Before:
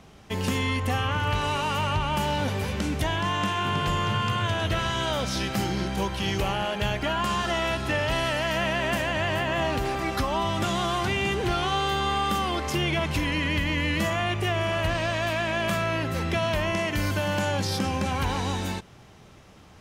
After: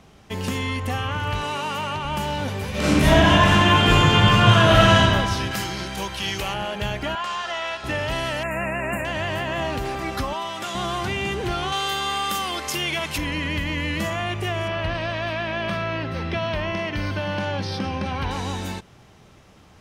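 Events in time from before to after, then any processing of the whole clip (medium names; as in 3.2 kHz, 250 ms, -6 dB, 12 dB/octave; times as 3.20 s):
1.43–2.05 s: high-pass 150 Hz
2.70–4.96 s: reverb throw, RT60 2 s, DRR -12 dB
5.51–6.54 s: tilt shelf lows -5 dB, about 940 Hz
7.15–7.84 s: three-band isolator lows -19 dB, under 530 Hz, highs -16 dB, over 7.2 kHz
8.43–9.05 s: brick-wall FIR band-stop 2.8–6.8 kHz
10.33–10.75 s: high-pass 710 Hz 6 dB/octave
11.72–13.18 s: tilt EQ +2.5 dB/octave
14.68–18.31 s: Savitzky-Golay filter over 15 samples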